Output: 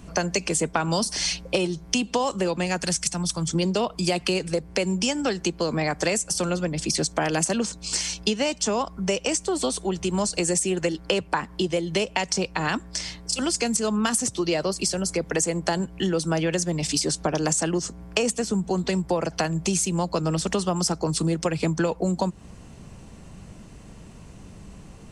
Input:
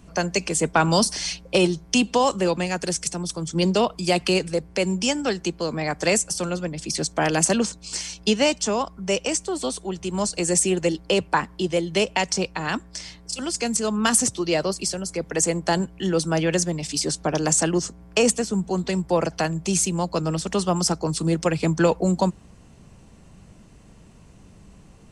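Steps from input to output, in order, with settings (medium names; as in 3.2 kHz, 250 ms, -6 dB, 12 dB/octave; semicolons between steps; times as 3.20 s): 2.82–3.48 s: peaking EQ 410 Hz -11 dB 0.86 oct; compression 6:1, threshold -26 dBFS, peak gain reduction 12.5 dB; 10.76–11.21 s: peaking EQ 1.5 kHz +5.5 dB; trim +5 dB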